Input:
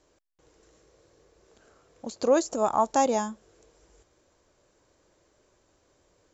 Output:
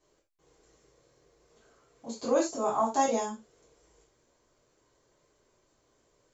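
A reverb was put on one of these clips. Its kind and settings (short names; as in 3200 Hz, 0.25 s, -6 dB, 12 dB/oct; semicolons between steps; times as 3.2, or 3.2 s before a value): non-linear reverb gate 0.12 s falling, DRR -7 dB; gain -11 dB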